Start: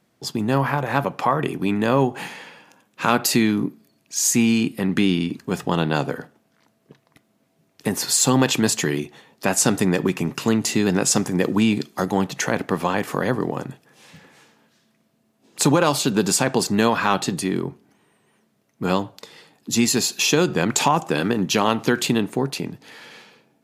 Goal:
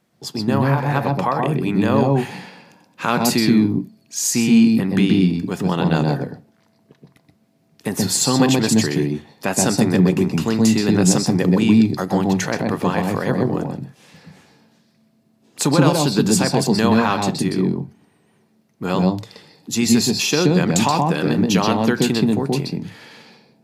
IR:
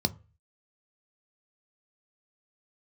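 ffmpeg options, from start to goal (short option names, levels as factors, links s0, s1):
-filter_complex "[0:a]asplit=2[s0][s1];[1:a]atrim=start_sample=2205,atrim=end_sample=3528,adelay=126[s2];[s1][s2]afir=irnorm=-1:irlink=0,volume=0.266[s3];[s0][s3]amix=inputs=2:normalize=0,volume=0.891"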